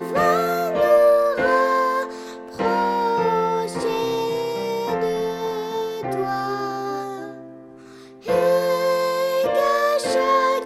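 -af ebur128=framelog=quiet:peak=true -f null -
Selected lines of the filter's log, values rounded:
Integrated loudness:
  I:         -20.8 LUFS
  Threshold: -31.3 LUFS
Loudness range:
  LRA:         6.6 LU
  Threshold: -42.5 LUFS
  LRA low:   -26.0 LUFS
  LRA high:  -19.4 LUFS
True peak:
  Peak:       -6.8 dBFS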